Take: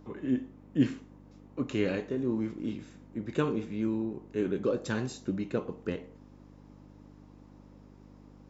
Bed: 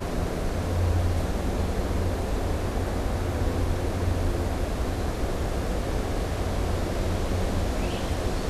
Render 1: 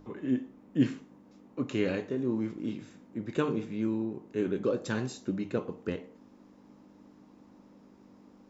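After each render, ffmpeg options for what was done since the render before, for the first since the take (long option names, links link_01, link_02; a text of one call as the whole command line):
ffmpeg -i in.wav -af "bandreject=frequency=50:width_type=h:width=4,bandreject=frequency=100:width_type=h:width=4,bandreject=frequency=150:width_type=h:width=4" out.wav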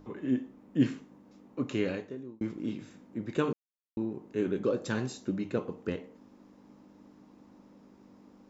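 ffmpeg -i in.wav -filter_complex "[0:a]asplit=4[link_01][link_02][link_03][link_04];[link_01]atrim=end=2.41,asetpts=PTS-STARTPTS,afade=type=out:start_time=1.73:duration=0.68[link_05];[link_02]atrim=start=2.41:end=3.53,asetpts=PTS-STARTPTS,afade=type=in:duration=0.004:curve=hsin,afade=type=out:start_time=1.116:duration=0.004:curve=hsin[link_06];[link_03]atrim=start=3.53:end=3.97,asetpts=PTS-STARTPTS,volume=0[link_07];[link_04]atrim=start=3.97,asetpts=PTS-STARTPTS,afade=type=in:duration=0.004:curve=hsin[link_08];[link_05][link_06][link_07][link_08]concat=n=4:v=0:a=1" out.wav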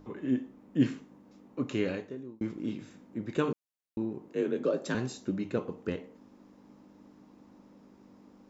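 ffmpeg -i in.wav -filter_complex "[0:a]asettb=1/sr,asplit=3[link_01][link_02][link_03];[link_01]atrim=end=4.284[link_04];[link_02]atrim=start=4.28:end=4.95,asetpts=PTS-STARTPTS,afade=type=in:duration=0.004:curve=qsin,afade=type=out:start_time=0.666:duration=0.004:curve=qsin,afreqshift=45[link_05];[link_03]atrim=start=4.946[link_06];[link_04][link_05]acrossfade=duration=0.004:curve1=hsin:curve2=qsin[link_07];[link_07][link_06]acrossfade=duration=0.004:curve1=qsin:curve2=hsin" out.wav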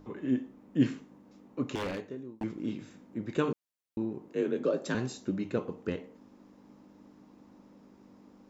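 ffmpeg -i in.wav -filter_complex "[0:a]asettb=1/sr,asplit=3[link_01][link_02][link_03];[link_01]atrim=end=1.754[link_04];[link_02]atrim=start=1.75:end=2.44,asetpts=PTS-STARTPTS,afade=type=in:duration=0.004:curve=qsin,afade=type=out:start_time=0.686:duration=0.004:curve=qsin,aeval=exprs='0.0376*(abs(mod(val(0)/0.0376+3,4)-2)-1)':channel_layout=same[link_05];[link_03]atrim=start=2.436[link_06];[link_04][link_05]acrossfade=duration=0.004:curve1=hsin:curve2=qsin[link_07];[link_07][link_06]acrossfade=duration=0.004:curve1=qsin:curve2=hsin" out.wav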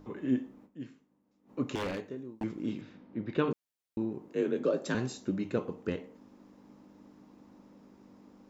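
ffmpeg -i in.wav -filter_complex "[0:a]asettb=1/sr,asplit=3[link_01][link_02][link_03];[link_01]atrim=end=2.814[link_04];[link_02]atrim=start=2.81:end=3.51,asetpts=PTS-STARTPTS,afade=type=in:duration=0.004:curve=qsin,afade=type=out:start_time=0.696:duration=0.004:curve=qsin,lowpass=frequency=4400:width=0.5412,lowpass=frequency=4400:width=1.3066[link_05];[link_03]atrim=start=3.506[link_06];[link_04][link_05]acrossfade=duration=0.004:curve1=hsin:curve2=qsin[link_07];[link_07][link_06]acrossfade=duration=0.004:curve1=qsin:curve2=hsin,asplit=3[link_08][link_09][link_10];[link_08]atrim=end=0.91,asetpts=PTS-STARTPTS,afade=type=out:start_time=0.65:duration=0.26:curve=exp:silence=0.133352[link_11];[link_09]atrim=start=0.91:end=1.24,asetpts=PTS-STARTPTS,volume=-17.5dB[link_12];[link_10]atrim=start=1.24,asetpts=PTS-STARTPTS,afade=type=in:duration=0.26:curve=exp:silence=0.133352[link_13];[link_11][link_12][link_13]concat=n=3:v=0:a=1" out.wav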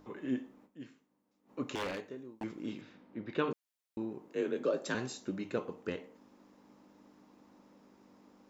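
ffmpeg -i in.wav -af "lowshelf=frequency=310:gain=-9.5" out.wav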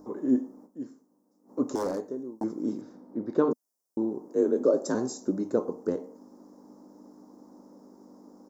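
ffmpeg -i in.wav -af "firequalizer=gain_entry='entry(120,0);entry(250,11);entry(950,6);entry(2600,-22);entry(5300,7)':delay=0.05:min_phase=1" out.wav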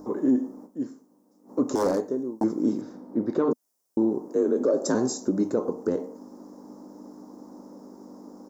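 ffmpeg -i in.wav -af "acontrast=77,alimiter=limit=-14dB:level=0:latency=1:release=116" out.wav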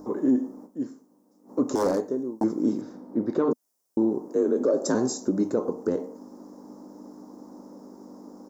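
ffmpeg -i in.wav -af anull out.wav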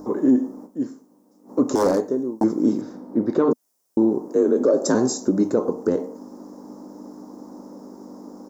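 ffmpeg -i in.wav -af "volume=5dB" out.wav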